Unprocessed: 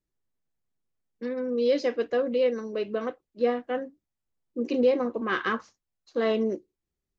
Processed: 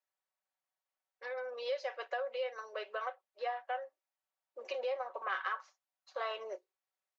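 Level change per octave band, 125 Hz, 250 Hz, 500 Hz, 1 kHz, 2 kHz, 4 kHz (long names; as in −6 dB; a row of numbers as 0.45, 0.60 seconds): can't be measured, below −35 dB, −13.5 dB, −4.0 dB, −6.5 dB, −7.5 dB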